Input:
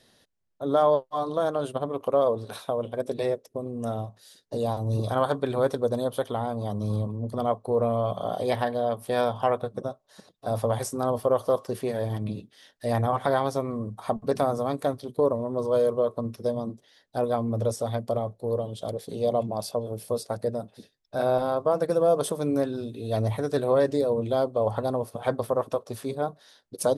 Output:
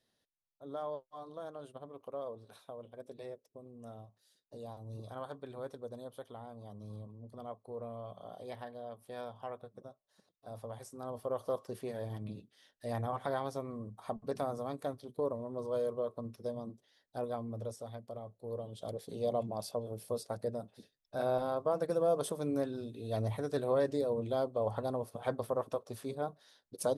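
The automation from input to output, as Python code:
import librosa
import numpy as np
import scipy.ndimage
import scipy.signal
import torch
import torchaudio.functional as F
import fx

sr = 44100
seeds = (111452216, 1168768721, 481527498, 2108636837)

y = fx.gain(x, sr, db=fx.line((10.83, -19.0), (11.48, -11.5), (17.22, -11.5), (18.11, -18.0), (18.93, -8.5)))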